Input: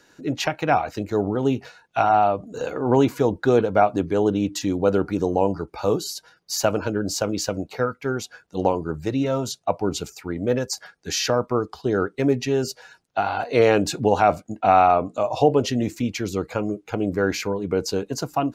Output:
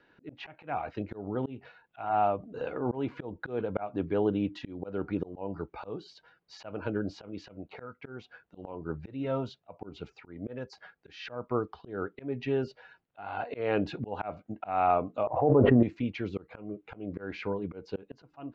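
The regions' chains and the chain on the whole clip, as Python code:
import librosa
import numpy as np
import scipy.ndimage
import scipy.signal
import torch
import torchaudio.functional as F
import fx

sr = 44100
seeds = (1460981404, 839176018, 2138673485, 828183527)

y = fx.chain(x, sr, fx.law_mismatch(coded='A'),
    fx.lowpass(hz=1200.0, slope=24),
    fx.env_flatten(amount_pct=100), at=(15.27, 15.83))
y = scipy.signal.sosfilt(scipy.signal.butter(4, 3200.0, 'lowpass', fs=sr, output='sos'), y)
y = fx.auto_swell(y, sr, attack_ms=263.0)
y = y * 10.0 ** (-7.0 / 20.0)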